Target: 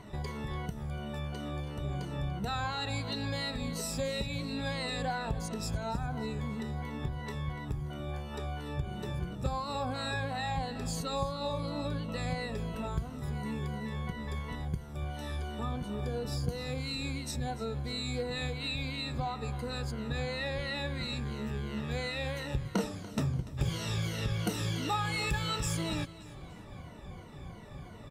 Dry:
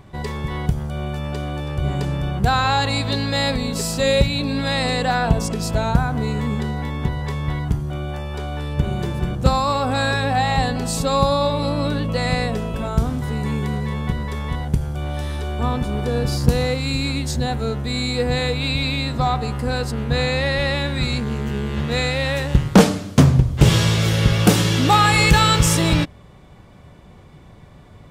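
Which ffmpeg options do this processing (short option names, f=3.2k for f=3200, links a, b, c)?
-af "afftfilt=real='re*pow(10,13/40*sin(2*PI*(1.9*log(max(b,1)*sr/1024/100)/log(2)-(-2.9)*(pts-256)/sr)))':imag='im*pow(10,13/40*sin(2*PI*(1.9*log(max(b,1)*sr/1024/100)/log(2)-(-2.9)*(pts-256)/sr)))':win_size=1024:overlap=0.75,acompressor=threshold=-36dB:ratio=2.5,aecho=1:1:290|580|870:0.141|0.0565|0.0226,volume=-3dB"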